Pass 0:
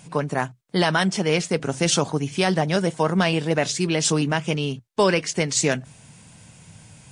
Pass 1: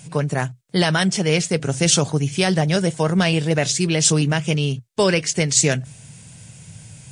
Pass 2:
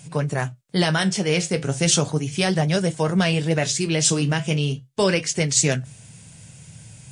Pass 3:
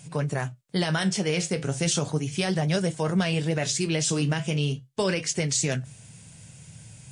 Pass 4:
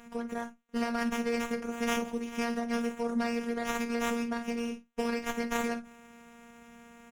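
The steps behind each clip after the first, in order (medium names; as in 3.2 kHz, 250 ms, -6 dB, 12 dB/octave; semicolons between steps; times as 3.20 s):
graphic EQ 125/250/1000/8000 Hz +6/-4/-6/+4 dB; trim +3 dB
flange 0.36 Hz, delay 6.9 ms, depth 9.3 ms, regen -63%; trim +2 dB
peak limiter -12 dBFS, peak gain reduction 7.5 dB; trim -3 dB
early reflections 45 ms -15.5 dB, 56 ms -15 dB; robot voice 235 Hz; sliding maximum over 9 samples; trim -5.5 dB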